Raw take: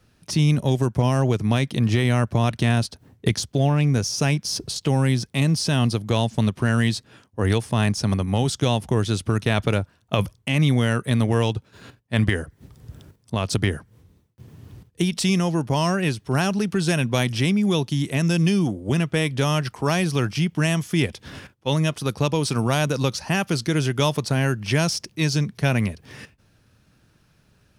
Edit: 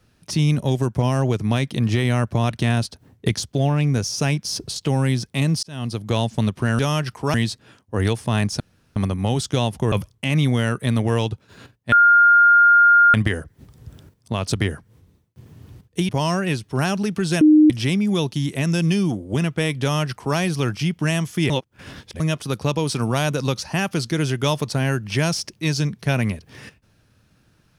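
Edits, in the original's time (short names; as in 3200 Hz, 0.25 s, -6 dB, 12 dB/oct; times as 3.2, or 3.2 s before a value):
5.63–6.1 fade in
8.05 insert room tone 0.36 s
9.01–10.16 cut
12.16 add tone 1410 Hz -9 dBFS 1.22 s
15.11–15.65 cut
16.97–17.26 bleep 306 Hz -8 dBFS
19.38–19.93 copy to 6.79
21.06–21.76 reverse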